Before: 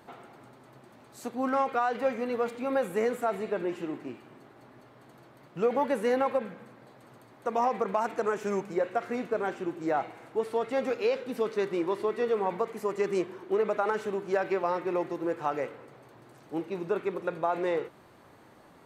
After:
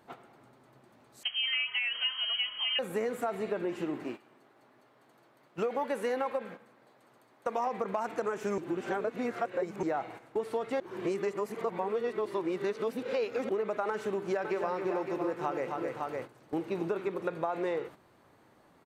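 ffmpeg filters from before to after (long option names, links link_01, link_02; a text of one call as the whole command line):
ffmpeg -i in.wav -filter_complex "[0:a]asettb=1/sr,asplit=3[link_01][link_02][link_03];[link_01]atrim=end=1.234[link_04];[link_02]atrim=start=1.23:end=2.79,asetpts=PTS-STARTPTS,afade=type=in:duration=0.004:curve=qsin,afade=type=out:start_time=1.556:duration=0.004:curve=qsin,lowpass=frequency=2900:width_type=q:width=0.5098,lowpass=frequency=2900:width_type=q:width=0.6013,lowpass=frequency=2900:width_type=q:width=0.9,lowpass=frequency=2900:width_type=q:width=2.563,afreqshift=-3400[link_05];[link_03]atrim=start=2.786[link_06];[link_04][link_05]acrossfade=duration=0.004:curve1=hsin:curve2=qsin[link_07];[link_07][link_06]acrossfade=duration=0.004:curve1=qsin:curve2=hsin,asettb=1/sr,asplit=3[link_08][link_09][link_10];[link_08]atrim=end=4.044[link_11];[link_09]atrim=start=4.04:end=7.67,asetpts=PTS-STARTPTS,afade=type=in:duration=0.004:curve=qsin,afade=type=out:start_time=3.626:duration=0.004:curve=qsin,highpass=frequency=350:poles=1[link_12];[link_10]atrim=start=7.666[link_13];[link_11][link_12]acrossfade=duration=0.004:curve1=hsin:curve2=qsin[link_14];[link_14][link_13]acrossfade=duration=0.004:curve1=qsin:curve2=hsin,asplit=3[link_15][link_16][link_17];[link_15]afade=type=out:start_time=14.43:duration=0.02[link_18];[link_16]aecho=1:1:265|559:0.376|0.335,afade=type=in:start_time=14.43:duration=0.02,afade=type=out:start_time=17.08:duration=0.02[link_19];[link_17]afade=type=in:start_time=17.08:duration=0.02[link_20];[link_18][link_19][link_20]amix=inputs=3:normalize=0,asplit=5[link_21][link_22][link_23][link_24][link_25];[link_21]atrim=end=8.582[link_26];[link_22]atrim=start=8.578:end=9.832,asetpts=PTS-STARTPTS,areverse[link_27];[link_23]atrim=start=9.828:end=10.802[link_28];[link_24]atrim=start=10.798:end=13.492,asetpts=PTS-STARTPTS,areverse[link_29];[link_25]atrim=start=13.488[link_30];[link_26][link_27]acrossfade=duration=0.004:curve1=hsin:curve2=hsin[link_31];[link_31][link_28]acrossfade=duration=0.004:curve1=hsin:curve2=hsin[link_32];[link_32][link_29]acrossfade=duration=0.004:curve1=hsin:curve2=hsin[link_33];[link_33][link_30]acrossfade=duration=0.004:curve1=hsin:curve2=hsin,agate=range=-12dB:threshold=-44dB:ratio=16:detection=peak,acompressor=threshold=-36dB:ratio=4,volume=5.5dB" out.wav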